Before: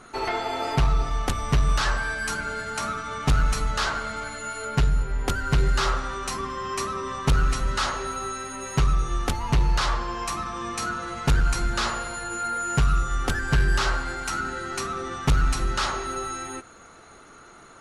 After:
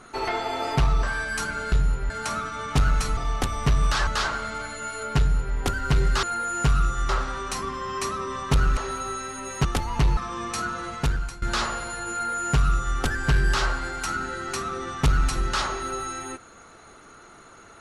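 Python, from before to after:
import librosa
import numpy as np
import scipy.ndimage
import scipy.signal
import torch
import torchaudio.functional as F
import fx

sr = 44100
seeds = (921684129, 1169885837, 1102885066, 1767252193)

y = fx.edit(x, sr, fx.move(start_s=1.03, length_s=0.9, to_s=3.69),
    fx.duplicate(start_s=4.8, length_s=0.38, to_s=2.62),
    fx.cut(start_s=7.53, length_s=0.4),
    fx.cut(start_s=8.81, length_s=0.37),
    fx.cut(start_s=9.7, length_s=0.71),
    fx.fade_out_to(start_s=11.11, length_s=0.55, floor_db=-20.0),
    fx.duplicate(start_s=12.36, length_s=0.86, to_s=5.85), tone=tone)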